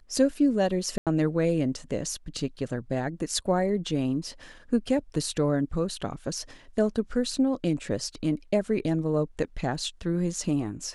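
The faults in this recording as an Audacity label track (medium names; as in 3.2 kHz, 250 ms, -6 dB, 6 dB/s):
0.980000	1.070000	dropout 87 ms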